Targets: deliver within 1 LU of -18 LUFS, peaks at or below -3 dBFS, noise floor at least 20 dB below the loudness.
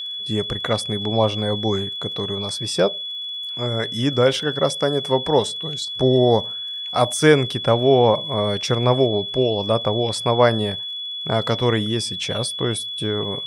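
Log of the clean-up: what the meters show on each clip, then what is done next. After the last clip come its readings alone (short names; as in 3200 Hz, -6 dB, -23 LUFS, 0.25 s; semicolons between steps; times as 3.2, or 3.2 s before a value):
ticks 36/s; steady tone 3400 Hz; tone level -27 dBFS; loudness -20.5 LUFS; peak -1.5 dBFS; loudness target -18.0 LUFS
-> de-click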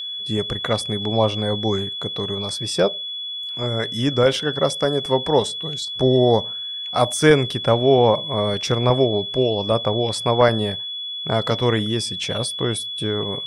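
ticks 0.30/s; steady tone 3400 Hz; tone level -27 dBFS
-> notch 3400 Hz, Q 30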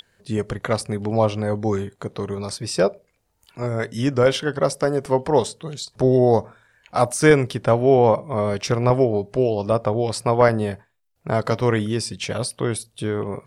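steady tone none; loudness -21.0 LUFS; peak -2.0 dBFS; loudness target -18.0 LUFS
-> gain +3 dB; limiter -3 dBFS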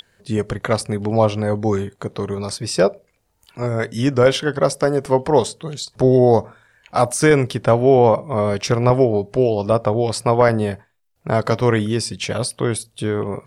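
loudness -18.5 LUFS; peak -3.0 dBFS; noise floor -65 dBFS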